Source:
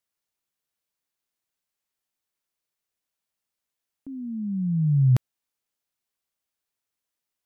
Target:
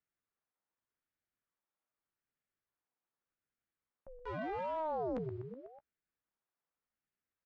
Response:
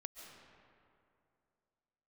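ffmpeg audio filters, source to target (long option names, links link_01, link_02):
-filter_complex "[0:a]acrossover=split=240[link_01][link_02];[link_01]acrusher=bits=5:mix=0:aa=0.000001[link_03];[link_03][link_02]amix=inputs=2:normalize=0,highpass=61,equalizer=frequency=240:width_type=o:width=1.1:gain=-15,asplit=2[link_04][link_05];[link_05]adelay=14,volume=-13dB[link_06];[link_04][link_06]amix=inputs=2:normalize=0,aecho=1:1:124|248|372|496|620:0.1|0.058|0.0336|0.0195|0.0113,areverse,acompressor=threshold=-31dB:ratio=6,areverse,lowpass=1100,asoftclip=type=tanh:threshold=-38dB,aeval=exprs='val(0)*sin(2*PI*520*n/s+520*0.55/0.84*sin(2*PI*0.84*n/s))':channel_layout=same,volume=6dB"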